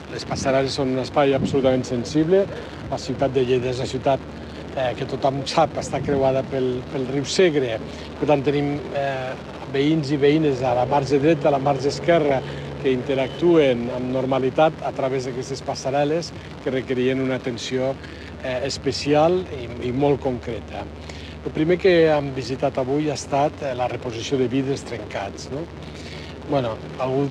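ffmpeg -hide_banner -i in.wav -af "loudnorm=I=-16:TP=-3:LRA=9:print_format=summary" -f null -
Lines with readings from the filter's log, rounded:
Input Integrated:    -22.2 LUFS
Input True Peak:      -4.6 dBTP
Input LRA:             6.0 LU
Input Threshold:     -32.5 LUFS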